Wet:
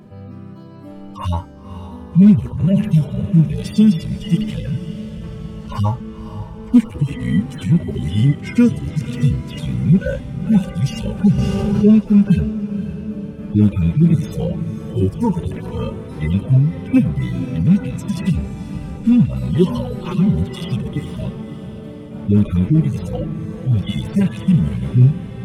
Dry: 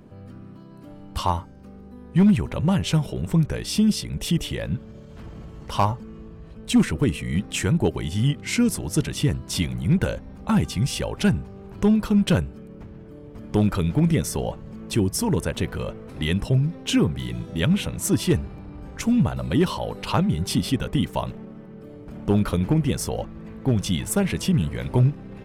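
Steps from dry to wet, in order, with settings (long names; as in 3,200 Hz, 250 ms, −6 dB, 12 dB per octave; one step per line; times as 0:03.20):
harmonic-percussive split with one part muted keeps harmonic
feedback delay with all-pass diffusion 530 ms, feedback 54%, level −11.5 dB
0:11.38–0:11.99: envelope flattener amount 50%
level +7.5 dB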